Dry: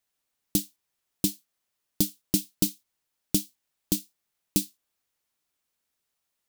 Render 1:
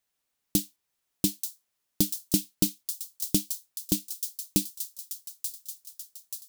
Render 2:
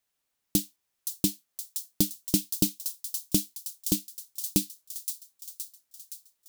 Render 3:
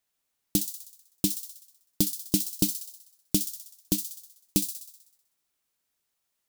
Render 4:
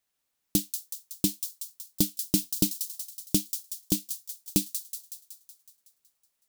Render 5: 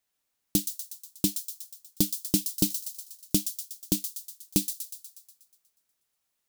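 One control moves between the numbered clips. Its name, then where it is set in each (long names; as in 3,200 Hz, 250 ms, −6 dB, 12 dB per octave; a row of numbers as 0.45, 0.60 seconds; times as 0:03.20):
delay with a high-pass on its return, delay time: 883, 519, 63, 186, 121 milliseconds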